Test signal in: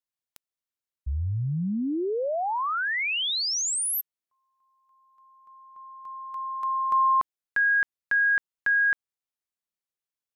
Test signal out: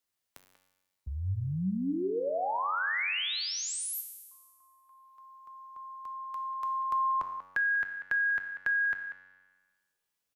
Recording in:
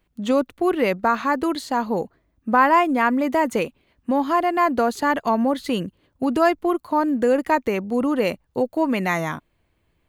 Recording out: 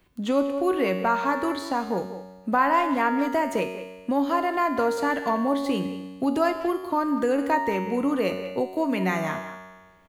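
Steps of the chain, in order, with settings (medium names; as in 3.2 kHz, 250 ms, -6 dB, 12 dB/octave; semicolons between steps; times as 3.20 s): feedback comb 93 Hz, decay 1.1 s, harmonics all, mix 80%; speakerphone echo 190 ms, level -13 dB; three bands compressed up and down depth 40%; trim +7 dB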